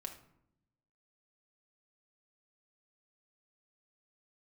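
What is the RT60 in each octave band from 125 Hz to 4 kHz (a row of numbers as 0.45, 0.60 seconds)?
1.3, 1.2, 0.80, 0.70, 0.55, 0.40 seconds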